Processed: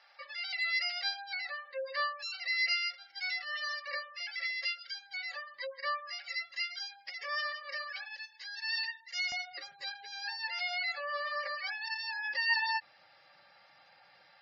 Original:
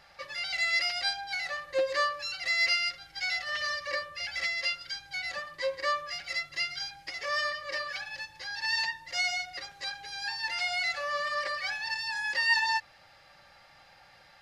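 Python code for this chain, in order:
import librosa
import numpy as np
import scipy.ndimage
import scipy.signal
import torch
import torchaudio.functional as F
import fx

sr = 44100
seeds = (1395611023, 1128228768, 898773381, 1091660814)

y = scipy.signal.sosfilt(scipy.signal.ellip(4, 1.0, 40, 7800.0, 'lowpass', fs=sr, output='sos'), x)
y = fx.spec_gate(y, sr, threshold_db=-20, keep='strong')
y = fx.highpass(y, sr, hz=fx.steps((0.0, 700.0), (8.17, 1500.0), (9.32, 190.0)), slope=12)
y = F.gain(torch.from_numpy(y), -3.5).numpy()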